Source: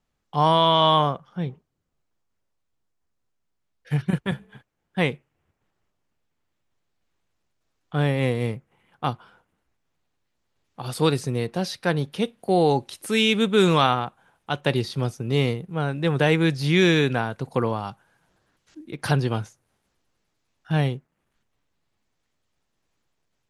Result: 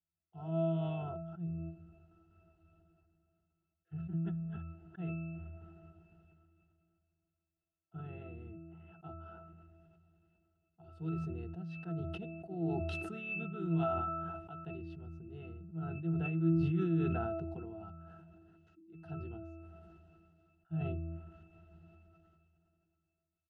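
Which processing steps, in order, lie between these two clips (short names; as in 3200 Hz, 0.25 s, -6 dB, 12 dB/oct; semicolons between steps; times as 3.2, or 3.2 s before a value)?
harmoniser -7 st -16 dB, -3 st -12 dB; octave resonator E, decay 0.36 s; sustainer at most 22 dB/s; gain -5.5 dB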